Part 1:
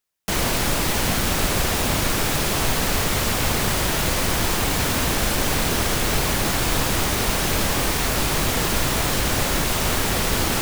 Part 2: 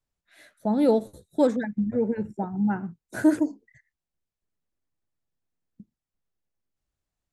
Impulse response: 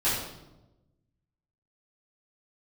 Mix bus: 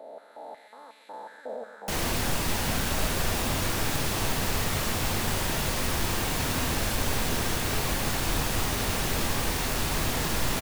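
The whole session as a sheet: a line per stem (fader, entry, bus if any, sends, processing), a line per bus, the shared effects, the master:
-8.5 dB, 1.60 s, send -17 dB, no echo send, none
-3.0 dB, 0.00 s, no send, echo send -14 dB, spectral blur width 1340 ms; step-sequenced high-pass 5.5 Hz 630–2400 Hz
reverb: on, RT60 1.0 s, pre-delay 4 ms
echo: delay 131 ms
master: none

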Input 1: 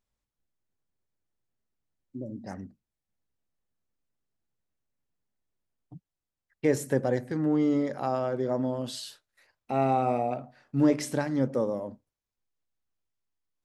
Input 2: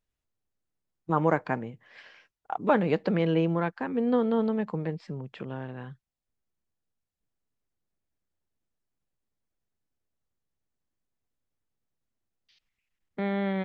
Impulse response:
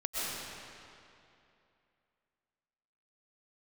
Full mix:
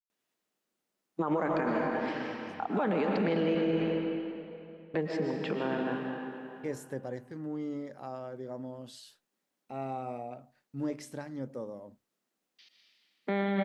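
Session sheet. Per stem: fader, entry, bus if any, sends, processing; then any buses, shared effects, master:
-12.0 dB, 0.00 s, no send, gate with hold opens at -46 dBFS
+2.5 dB, 0.10 s, muted 3.55–4.94 s, send -4 dB, high-pass 200 Hz 24 dB/octave; peak limiter -21 dBFS, peak gain reduction 10.5 dB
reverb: on, RT60 2.7 s, pre-delay 85 ms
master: peak limiter -21 dBFS, peak gain reduction 10 dB

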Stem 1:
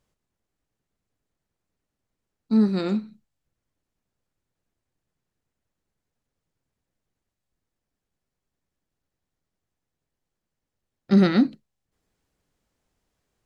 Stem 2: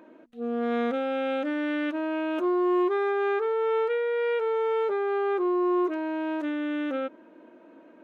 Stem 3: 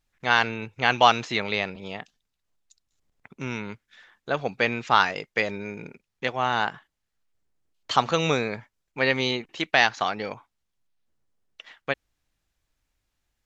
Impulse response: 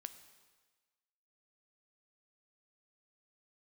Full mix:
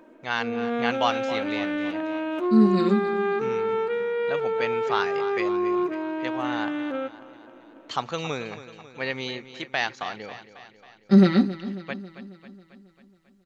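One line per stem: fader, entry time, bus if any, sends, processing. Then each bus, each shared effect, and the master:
-3.5 dB, 0.00 s, no send, echo send -15 dB, comb 5.2 ms, depth 89%
0.0 dB, 0.00 s, no send, echo send -20 dB, none
-7.0 dB, 0.00 s, no send, echo send -13.5 dB, none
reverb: none
echo: feedback delay 272 ms, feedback 58%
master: none

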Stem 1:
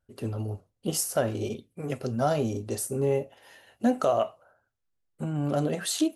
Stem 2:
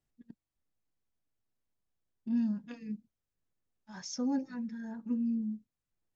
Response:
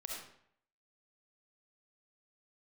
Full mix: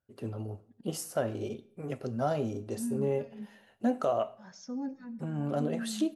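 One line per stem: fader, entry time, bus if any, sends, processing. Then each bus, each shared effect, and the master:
-5.0 dB, 0.00 s, send -16.5 dB, high-pass 91 Hz
-5.5 dB, 0.50 s, send -13.5 dB, none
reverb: on, RT60 0.65 s, pre-delay 25 ms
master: treble shelf 3.5 kHz -7.5 dB

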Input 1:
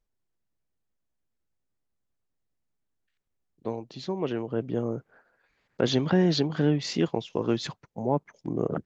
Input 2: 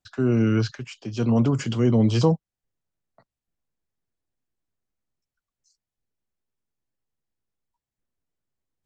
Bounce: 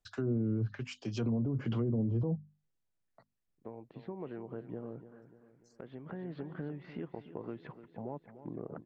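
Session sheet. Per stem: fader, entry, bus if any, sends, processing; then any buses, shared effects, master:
-7.0 dB, 0.00 s, no send, echo send -13 dB, low-pass 2.2 kHz 24 dB/octave; compression 4:1, threshold -32 dBFS, peak gain reduction 12.5 dB; auto duck -9 dB, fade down 0.70 s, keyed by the second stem
-4.5 dB, 0.00 s, no send, no echo send, low-pass that closes with the level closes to 490 Hz, closed at -17 dBFS; hum notches 50/100/150/200/250 Hz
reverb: none
echo: feedback delay 295 ms, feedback 47%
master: peak limiter -25.5 dBFS, peak gain reduction 10.5 dB

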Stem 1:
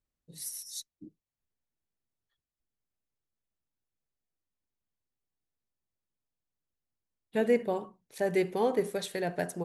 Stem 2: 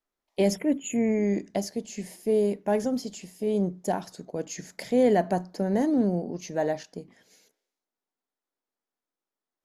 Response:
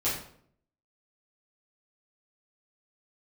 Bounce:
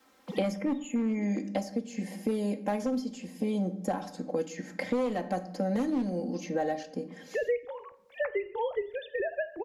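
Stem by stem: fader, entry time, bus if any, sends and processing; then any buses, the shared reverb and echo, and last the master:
-3.0 dB, 0.00 s, send -22.5 dB, formants replaced by sine waves; peaking EQ 300 Hz -9 dB 1.6 oct
-7.5 dB, 0.00 s, send -18 dB, high-pass 110 Hz 12 dB/octave; comb 3.8 ms, depth 100%; one-sided clip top -16.5 dBFS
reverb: on, RT60 0.60 s, pre-delay 6 ms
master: treble shelf 6 kHz -7 dB; three bands compressed up and down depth 100%

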